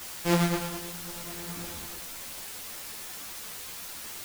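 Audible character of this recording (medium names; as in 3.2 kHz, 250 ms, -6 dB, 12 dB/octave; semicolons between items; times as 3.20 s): a buzz of ramps at a fixed pitch in blocks of 256 samples; tremolo triangle 0.77 Hz, depth 85%; a quantiser's noise floor 8-bit, dither triangular; a shimmering, thickened sound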